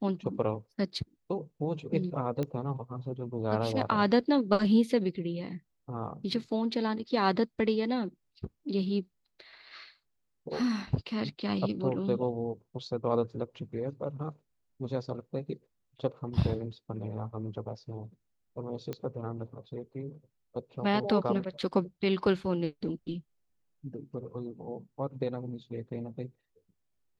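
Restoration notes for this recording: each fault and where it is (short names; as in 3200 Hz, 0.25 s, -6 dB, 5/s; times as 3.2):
2.43 pop -21 dBFS
18.93 pop -23 dBFS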